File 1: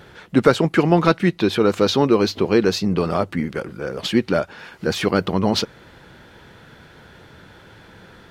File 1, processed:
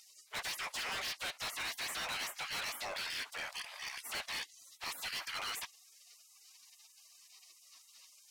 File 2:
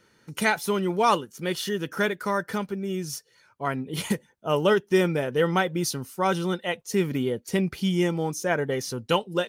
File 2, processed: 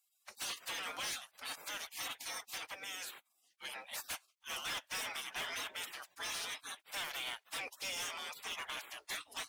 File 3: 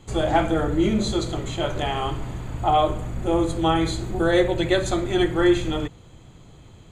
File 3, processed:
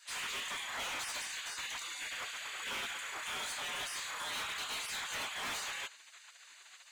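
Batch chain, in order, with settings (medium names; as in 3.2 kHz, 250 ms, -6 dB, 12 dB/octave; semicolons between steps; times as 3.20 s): spectral gate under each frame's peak -30 dB weak; overdrive pedal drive 24 dB, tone 4.9 kHz, clips at -18 dBFS; overload inside the chain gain 30 dB; trim -7 dB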